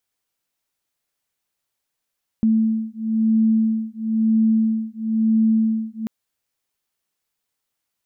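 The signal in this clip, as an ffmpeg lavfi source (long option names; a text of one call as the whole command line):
ffmpeg -f lavfi -i "aevalsrc='0.112*(sin(2*PI*221*t)+sin(2*PI*222*t))':duration=3.64:sample_rate=44100" out.wav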